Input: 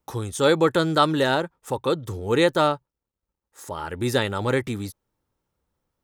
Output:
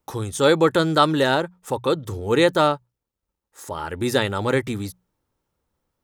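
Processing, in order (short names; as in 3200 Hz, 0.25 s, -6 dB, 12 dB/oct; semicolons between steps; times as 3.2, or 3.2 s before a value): notches 60/120/180 Hz; gain +2 dB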